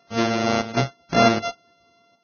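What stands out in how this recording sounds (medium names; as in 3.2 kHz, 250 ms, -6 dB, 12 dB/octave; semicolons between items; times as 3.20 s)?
a buzz of ramps at a fixed pitch in blocks of 64 samples; chopped level 1.3 Hz, depth 65%, duty 80%; Vorbis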